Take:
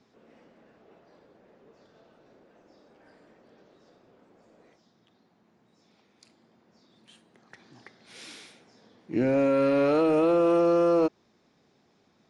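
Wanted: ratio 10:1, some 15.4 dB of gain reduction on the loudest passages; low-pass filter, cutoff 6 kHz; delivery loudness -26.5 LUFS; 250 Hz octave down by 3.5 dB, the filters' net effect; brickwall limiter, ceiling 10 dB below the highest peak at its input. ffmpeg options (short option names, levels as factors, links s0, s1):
-af "lowpass=6000,equalizer=f=250:t=o:g=-5,acompressor=threshold=0.0141:ratio=10,volume=15,alimiter=limit=0.188:level=0:latency=1"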